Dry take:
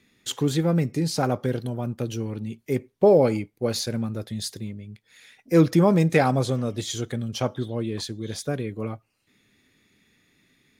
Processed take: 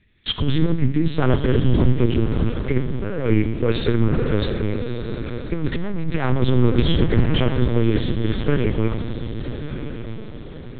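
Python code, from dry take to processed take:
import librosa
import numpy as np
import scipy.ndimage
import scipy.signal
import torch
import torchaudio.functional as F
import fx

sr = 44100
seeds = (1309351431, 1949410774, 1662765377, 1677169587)

y = fx.law_mismatch(x, sr, coded='A')
y = np.repeat(y[::3], 3)[:len(y)]
y = np.clip(y, -10.0 ** (-17.5 / 20.0), 10.0 ** (-17.5 / 20.0))
y = fx.low_shelf(y, sr, hz=81.0, db=7.0)
y = fx.echo_diffused(y, sr, ms=1205, feedback_pct=42, wet_db=-10.5)
y = fx.over_compress(y, sr, threshold_db=-24.0, ratio=-0.5)
y = fx.room_shoebox(y, sr, seeds[0], volume_m3=1100.0, walls='mixed', distance_m=0.66)
y = fx.lpc_vocoder(y, sr, seeds[1], excitation='pitch_kept', order=8)
y = fx.peak_eq(y, sr, hz=720.0, db=-9.0, octaves=1.1)
y = fx.doppler_dist(y, sr, depth_ms=0.12)
y = F.gain(torch.from_numpy(y), 9.0).numpy()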